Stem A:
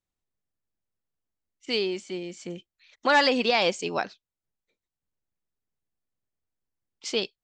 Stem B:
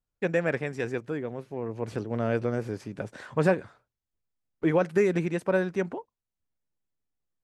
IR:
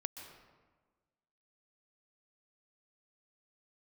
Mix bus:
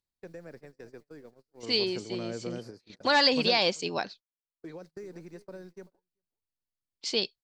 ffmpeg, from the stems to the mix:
-filter_complex "[0:a]lowshelf=frequency=280:gain=3.5,bandreject=frequency=1300:width=12,acompressor=mode=upward:threshold=-42dB:ratio=2.5,volume=-4dB,asplit=2[link_01][link_02];[1:a]highpass=frequency=190:poles=1,highshelf=frequency=4000:width_type=q:width=3:gain=6.5,acrossover=split=470|2100[link_03][link_04][link_05];[link_03]acompressor=threshold=-28dB:ratio=4[link_06];[link_04]acompressor=threshold=-37dB:ratio=4[link_07];[link_05]acompressor=threshold=-54dB:ratio=4[link_08];[link_06][link_07][link_08]amix=inputs=3:normalize=0,volume=-6dB,afade=type=out:start_time=5.74:duration=0.47:silence=0.251189,asplit=2[link_09][link_10];[link_10]volume=-24dB[link_11];[link_02]apad=whole_len=327979[link_12];[link_09][link_12]sidechaingate=range=-8dB:threshold=-55dB:ratio=16:detection=peak[link_13];[link_11]aecho=0:1:388:1[link_14];[link_01][link_13][link_14]amix=inputs=3:normalize=0,equalizer=frequency=4400:width=2.6:gain=9.5,agate=range=-29dB:threshold=-48dB:ratio=16:detection=peak"

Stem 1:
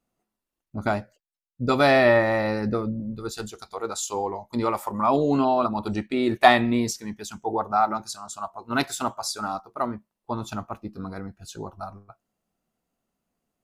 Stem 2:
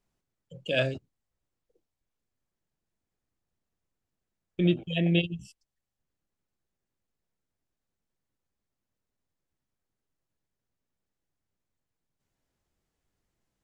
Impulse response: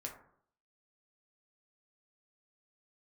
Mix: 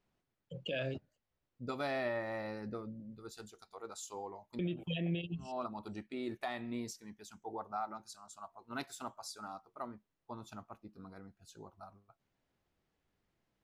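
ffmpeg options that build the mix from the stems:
-filter_complex "[0:a]volume=-16.5dB[link_01];[1:a]lowpass=4100,volume=1.5dB,asplit=2[link_02][link_03];[link_03]apad=whole_len=601198[link_04];[link_01][link_04]sidechaincompress=threshold=-57dB:ratio=8:attack=16:release=108[link_05];[link_05][link_02]amix=inputs=2:normalize=0,lowshelf=frequency=60:gain=-8,alimiter=level_in=4dB:limit=-24dB:level=0:latency=1:release=278,volume=-4dB"

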